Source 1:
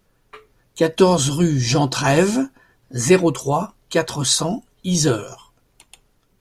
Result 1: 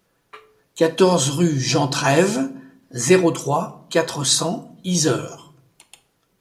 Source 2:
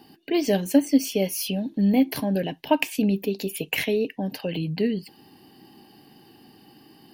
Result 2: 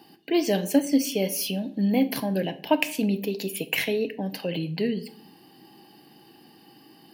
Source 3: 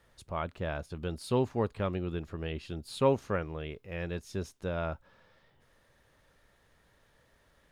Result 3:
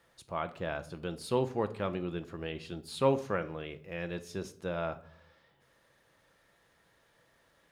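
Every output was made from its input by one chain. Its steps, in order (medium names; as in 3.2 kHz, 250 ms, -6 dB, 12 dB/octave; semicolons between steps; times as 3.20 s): high-pass 96 Hz 6 dB/octave; bass shelf 210 Hz -4.5 dB; simulated room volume 840 m³, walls furnished, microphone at 0.73 m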